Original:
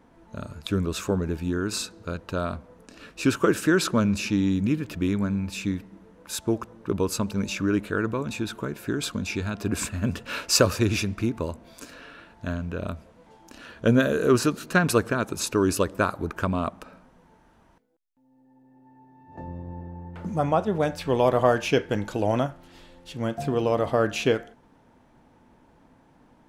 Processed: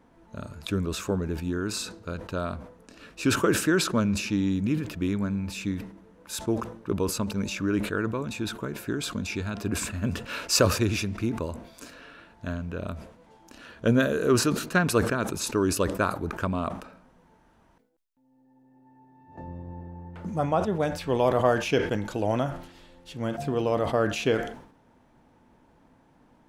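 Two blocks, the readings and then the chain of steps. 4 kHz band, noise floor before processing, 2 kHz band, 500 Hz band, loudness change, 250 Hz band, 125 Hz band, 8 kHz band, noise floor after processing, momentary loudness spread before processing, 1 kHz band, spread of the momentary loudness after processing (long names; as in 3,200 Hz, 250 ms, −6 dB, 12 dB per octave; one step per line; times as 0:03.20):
−1.0 dB, −59 dBFS, −1.5 dB, −2.0 dB, −1.5 dB, −2.0 dB, −1.5 dB, −0.5 dB, −61 dBFS, 16 LU, −1.5 dB, 17 LU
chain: level that may fall only so fast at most 92 dB per second
level −2.5 dB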